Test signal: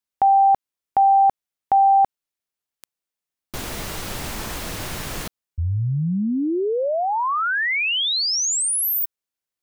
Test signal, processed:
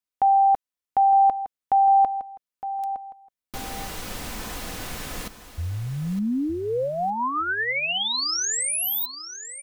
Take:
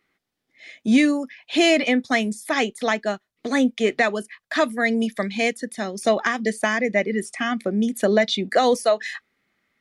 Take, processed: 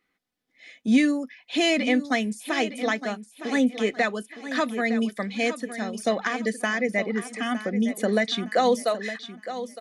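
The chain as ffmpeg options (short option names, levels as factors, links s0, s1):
-filter_complex "[0:a]aecho=1:1:4:0.32,asplit=2[s0][s1];[s1]aecho=0:1:912|1824|2736:0.251|0.0703|0.0197[s2];[s0][s2]amix=inputs=2:normalize=0,volume=0.596"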